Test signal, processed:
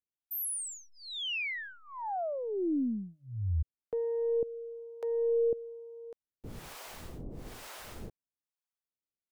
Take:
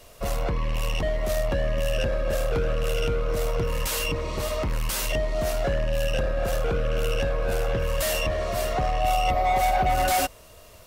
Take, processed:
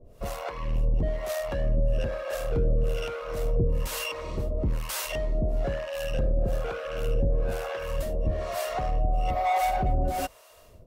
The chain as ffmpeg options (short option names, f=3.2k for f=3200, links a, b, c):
-filter_complex "[0:a]aeval=exprs='0.224*(cos(1*acos(clip(val(0)/0.224,-1,1)))-cos(1*PI/2))+0.00251*(cos(8*acos(clip(val(0)/0.224,-1,1)))-cos(8*PI/2))':c=same,acrossover=split=550[a][b];[a]aeval=exprs='val(0)*(1-1/2+1/2*cos(2*PI*1.1*n/s))':c=same[c];[b]aeval=exprs='val(0)*(1-1/2-1/2*cos(2*PI*1.1*n/s))':c=same[d];[c][d]amix=inputs=2:normalize=0,tiltshelf=f=970:g=3.5"